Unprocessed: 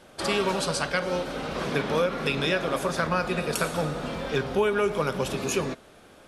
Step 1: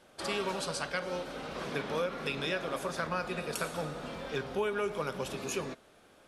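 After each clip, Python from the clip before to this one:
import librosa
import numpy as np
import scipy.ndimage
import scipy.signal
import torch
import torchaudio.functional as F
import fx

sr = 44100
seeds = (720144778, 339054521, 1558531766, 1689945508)

y = fx.low_shelf(x, sr, hz=240.0, db=-4.0)
y = y * librosa.db_to_amplitude(-7.5)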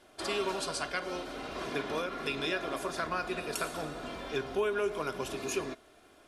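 y = x + 0.51 * np.pad(x, (int(2.9 * sr / 1000.0), 0))[:len(x)]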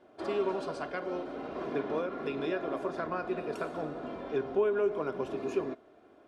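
y = fx.bandpass_q(x, sr, hz=360.0, q=0.59)
y = y * librosa.db_to_amplitude(3.5)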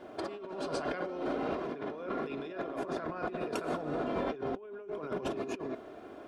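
y = fx.over_compress(x, sr, threshold_db=-42.0, ratio=-1.0)
y = y * librosa.db_to_amplitude(4.0)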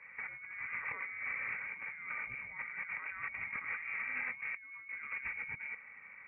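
y = fx.freq_invert(x, sr, carrier_hz=2600)
y = y * librosa.db_to_amplitude(-5.5)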